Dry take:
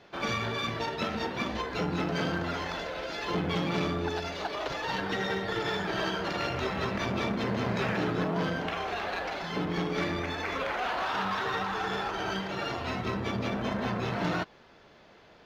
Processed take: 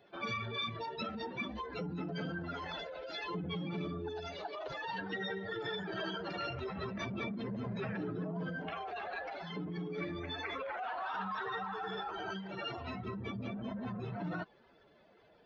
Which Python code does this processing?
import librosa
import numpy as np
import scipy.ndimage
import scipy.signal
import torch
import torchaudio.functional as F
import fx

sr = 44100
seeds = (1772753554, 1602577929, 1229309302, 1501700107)

y = fx.spec_expand(x, sr, power=2.0)
y = librosa.effects.preemphasis(y, coef=0.8, zi=[0.0])
y = y * 10.0 ** (5.0 / 20.0)